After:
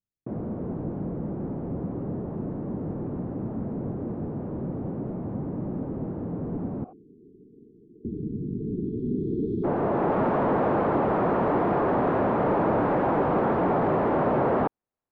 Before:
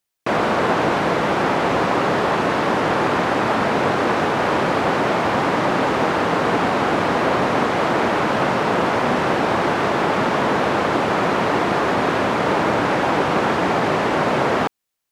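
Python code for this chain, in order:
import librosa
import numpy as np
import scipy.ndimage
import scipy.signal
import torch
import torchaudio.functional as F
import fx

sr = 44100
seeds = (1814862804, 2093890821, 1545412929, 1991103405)

y = fx.vowel_filter(x, sr, vowel='a', at=(6.84, 8.05))
y = 10.0 ** (-16.0 / 20.0) * np.tanh(y / 10.0 ** (-16.0 / 20.0))
y = fx.filter_sweep_lowpass(y, sr, from_hz=220.0, to_hz=950.0, start_s=8.46, end_s=10.22, q=0.7)
y = fx.spec_erase(y, sr, start_s=6.93, length_s=2.71, low_hz=470.0, high_hz=3200.0)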